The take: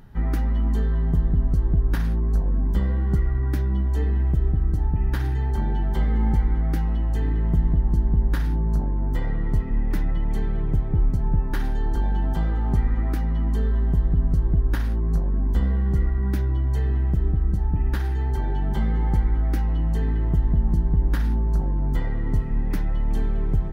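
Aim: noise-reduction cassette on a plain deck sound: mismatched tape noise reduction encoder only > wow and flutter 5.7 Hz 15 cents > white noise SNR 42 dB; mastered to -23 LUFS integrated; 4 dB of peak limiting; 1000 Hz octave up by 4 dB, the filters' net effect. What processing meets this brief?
bell 1000 Hz +5 dB; limiter -15 dBFS; mismatched tape noise reduction encoder only; wow and flutter 5.7 Hz 15 cents; white noise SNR 42 dB; gain +2 dB

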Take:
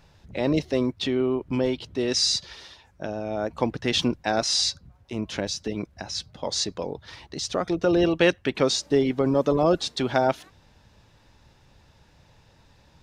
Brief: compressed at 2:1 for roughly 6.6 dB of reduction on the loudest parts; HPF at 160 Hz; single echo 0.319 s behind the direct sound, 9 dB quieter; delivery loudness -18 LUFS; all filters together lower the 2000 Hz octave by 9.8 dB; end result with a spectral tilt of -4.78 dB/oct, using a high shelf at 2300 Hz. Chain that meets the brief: HPF 160 Hz; bell 2000 Hz -8.5 dB; high shelf 2300 Hz -9 dB; compressor 2:1, threshold -29 dBFS; echo 0.319 s -9 dB; gain +14 dB

